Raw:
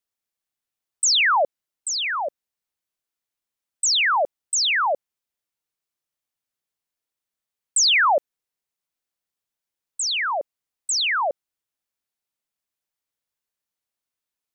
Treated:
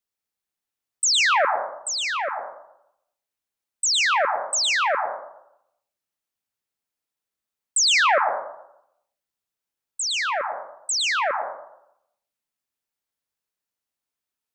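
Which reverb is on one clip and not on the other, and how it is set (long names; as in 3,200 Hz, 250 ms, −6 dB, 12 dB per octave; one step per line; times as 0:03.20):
dense smooth reverb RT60 0.78 s, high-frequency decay 0.35×, pre-delay 100 ms, DRR 3.5 dB
level −1.5 dB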